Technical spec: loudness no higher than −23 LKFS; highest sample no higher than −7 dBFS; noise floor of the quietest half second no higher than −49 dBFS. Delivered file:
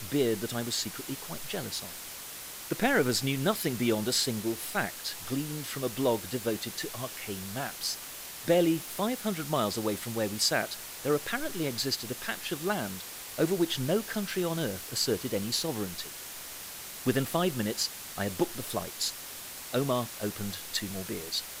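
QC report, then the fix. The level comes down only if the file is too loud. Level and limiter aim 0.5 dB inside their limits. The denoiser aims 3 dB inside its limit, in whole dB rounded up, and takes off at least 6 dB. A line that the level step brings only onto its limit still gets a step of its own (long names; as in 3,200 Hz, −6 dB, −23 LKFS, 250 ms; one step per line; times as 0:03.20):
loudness −31.0 LKFS: in spec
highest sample −14.0 dBFS: in spec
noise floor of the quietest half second −43 dBFS: out of spec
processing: broadband denoise 9 dB, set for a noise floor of −43 dBFS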